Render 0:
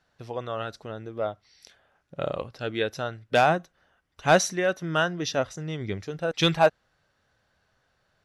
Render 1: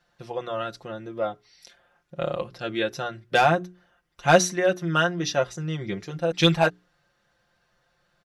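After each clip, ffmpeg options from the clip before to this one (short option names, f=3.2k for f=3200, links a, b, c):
-af "bandreject=f=60:t=h:w=6,bandreject=f=120:t=h:w=6,bandreject=f=180:t=h:w=6,bandreject=f=240:t=h:w=6,bandreject=f=300:t=h:w=6,bandreject=f=360:t=h:w=6,bandreject=f=420:t=h:w=6,aecho=1:1:5.7:0.77"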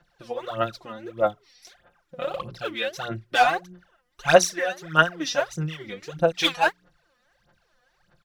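-filter_complex "[0:a]acrossover=split=550|5200[a][b][c];[a]acompressor=threshold=-35dB:ratio=6[d];[d][b][c]amix=inputs=3:normalize=0,aphaser=in_gain=1:out_gain=1:delay=4.1:decay=0.79:speed=1.6:type=sinusoidal,volume=-3dB"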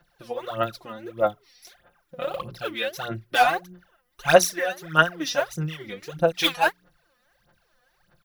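-af "aexciter=amount=4.2:drive=1.4:freq=9.9k"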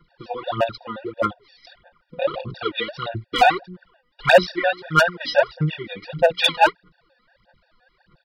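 -af "aresample=11025,aresample=44100,volume=13.5dB,asoftclip=hard,volume=-13.5dB,afftfilt=real='re*gt(sin(2*PI*5.7*pts/sr)*(1-2*mod(floor(b*sr/1024/480),2)),0)':imag='im*gt(sin(2*PI*5.7*pts/sr)*(1-2*mod(floor(b*sr/1024/480),2)),0)':win_size=1024:overlap=0.75,volume=8dB"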